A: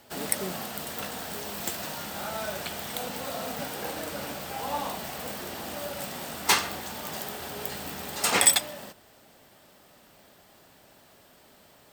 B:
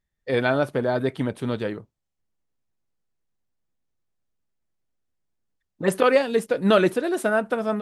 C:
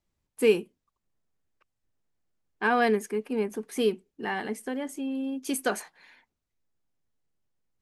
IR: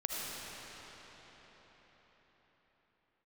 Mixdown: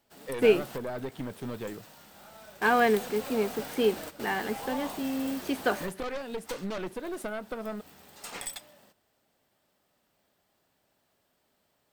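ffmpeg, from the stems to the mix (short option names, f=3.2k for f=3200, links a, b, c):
-filter_complex "[0:a]volume=-14.5dB[a];[1:a]volume=-16.5dB[b];[2:a]acrossover=split=4000[c][d];[d]acompressor=threshold=-53dB:ratio=4:attack=1:release=60[e];[c][e]amix=inputs=2:normalize=0,lowshelf=f=110:g=-10,volume=1dB,asplit=2[f][g];[g]apad=whole_len=525798[h];[a][h]sidechaingate=range=-12dB:threshold=-47dB:ratio=16:detection=peak[i];[i][b]amix=inputs=2:normalize=0,aeval=exprs='0.0841*(cos(1*acos(clip(val(0)/0.0841,-1,1)))-cos(1*PI/2))+0.0335*(cos(5*acos(clip(val(0)/0.0841,-1,1)))-cos(5*PI/2))+0.0211*(cos(6*acos(clip(val(0)/0.0841,-1,1)))-cos(6*PI/2))':c=same,acompressor=threshold=-32dB:ratio=4,volume=0dB[j];[f][j]amix=inputs=2:normalize=0"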